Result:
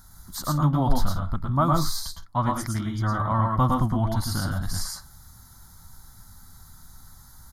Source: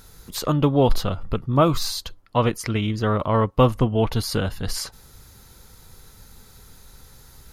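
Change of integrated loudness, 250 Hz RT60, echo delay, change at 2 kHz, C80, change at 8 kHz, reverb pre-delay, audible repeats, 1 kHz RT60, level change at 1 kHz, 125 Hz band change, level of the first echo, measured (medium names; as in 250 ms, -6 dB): -3.0 dB, no reverb, 107 ms, -4.0 dB, no reverb, -1.0 dB, no reverb, 2, no reverb, -0.5 dB, -1.0 dB, -4.0 dB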